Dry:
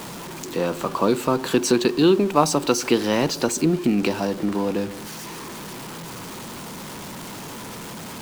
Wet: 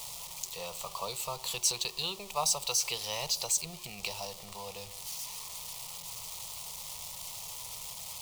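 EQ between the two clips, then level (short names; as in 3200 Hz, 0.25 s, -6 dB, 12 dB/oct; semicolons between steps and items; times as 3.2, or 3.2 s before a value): passive tone stack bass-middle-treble 10-0-10; fixed phaser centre 660 Hz, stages 4; notch 1400 Hz, Q 26; 0.0 dB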